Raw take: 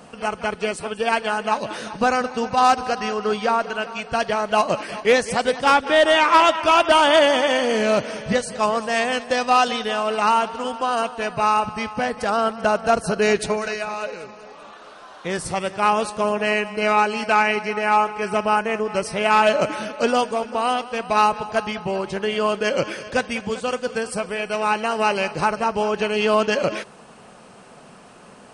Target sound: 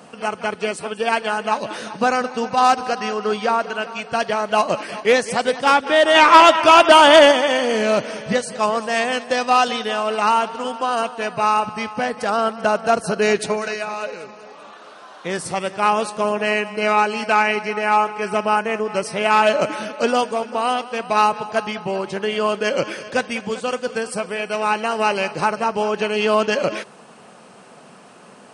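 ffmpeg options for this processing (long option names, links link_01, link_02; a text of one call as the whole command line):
ffmpeg -i in.wav -filter_complex "[0:a]highpass=140,asplit=3[link_01][link_02][link_03];[link_01]afade=type=out:start_time=6.14:duration=0.02[link_04];[link_02]acontrast=40,afade=type=in:start_time=6.14:duration=0.02,afade=type=out:start_time=7.31:duration=0.02[link_05];[link_03]afade=type=in:start_time=7.31:duration=0.02[link_06];[link_04][link_05][link_06]amix=inputs=3:normalize=0,volume=1dB" out.wav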